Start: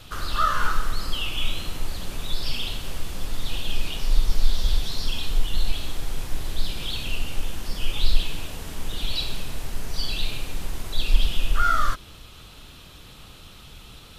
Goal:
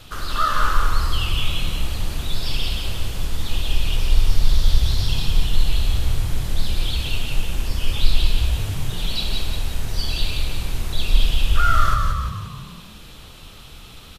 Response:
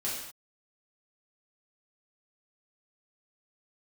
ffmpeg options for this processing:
-filter_complex "[0:a]asplit=7[a][b][c][d][e][f][g];[b]adelay=176,afreqshift=-37,volume=-4dB[h];[c]adelay=352,afreqshift=-74,volume=-10.2dB[i];[d]adelay=528,afreqshift=-111,volume=-16.4dB[j];[e]adelay=704,afreqshift=-148,volume=-22.6dB[k];[f]adelay=880,afreqshift=-185,volume=-28.8dB[l];[g]adelay=1056,afreqshift=-222,volume=-35dB[m];[a][h][i][j][k][l][m]amix=inputs=7:normalize=0,asplit=2[n][o];[1:a]atrim=start_sample=2205,adelay=130[p];[o][p]afir=irnorm=-1:irlink=0,volume=-21dB[q];[n][q]amix=inputs=2:normalize=0,volume=1.5dB"

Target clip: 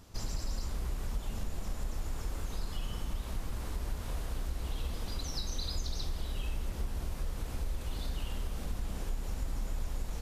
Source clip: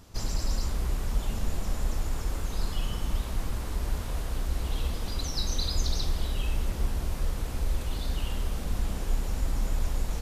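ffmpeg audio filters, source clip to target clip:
-af "acompressor=threshold=-29dB:ratio=2.5,volume=-3dB"

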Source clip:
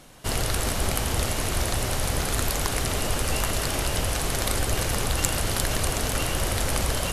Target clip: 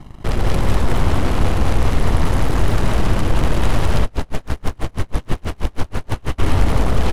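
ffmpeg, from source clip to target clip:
-filter_complex "[0:a]lowpass=f=1.1k:p=1,lowshelf=f=200:g=10.5,aecho=1:1:1:0.72,acompressor=threshold=-12dB:ratio=6,asoftclip=type=tanh:threshold=-15.5dB,aeval=exprs='0.168*(cos(1*acos(clip(val(0)/0.168,-1,1)))-cos(1*PI/2))+0.0668*(cos(8*acos(clip(val(0)/0.168,-1,1)))-cos(8*PI/2))':c=same,aecho=1:1:105|198.3|268.2:0.316|0.708|0.282,asplit=3[a][b][c];[a]afade=t=out:st=4.01:d=0.02[d];[b]aeval=exprs='val(0)*pow(10,-36*(0.5-0.5*cos(2*PI*6.2*n/s))/20)':c=same,afade=t=in:st=4.01:d=0.02,afade=t=out:st=6.38:d=0.02[e];[c]afade=t=in:st=6.38:d=0.02[f];[d][e][f]amix=inputs=3:normalize=0,volume=1.5dB"

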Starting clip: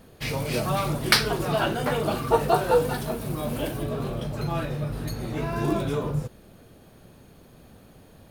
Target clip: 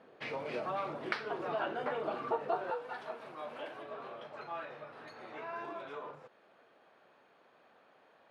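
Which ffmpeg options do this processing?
-af "acompressor=threshold=-29dB:ratio=3,asetnsamples=n=441:p=0,asendcmd='2.7 highpass f 760',highpass=390,lowpass=2.1k,volume=-2.5dB"

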